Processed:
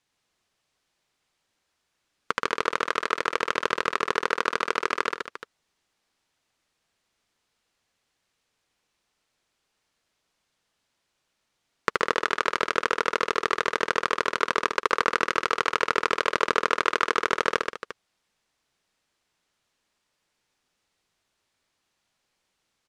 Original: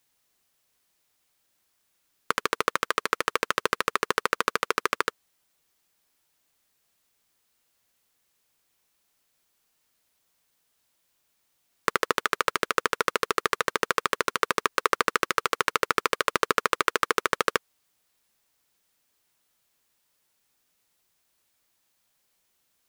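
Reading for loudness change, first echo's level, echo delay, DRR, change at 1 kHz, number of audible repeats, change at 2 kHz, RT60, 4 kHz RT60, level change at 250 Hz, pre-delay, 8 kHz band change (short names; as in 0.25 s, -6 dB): +0.5 dB, -16.5 dB, 77 ms, none, +1.0 dB, 4, +1.0 dB, none, none, +1.0 dB, none, -5.0 dB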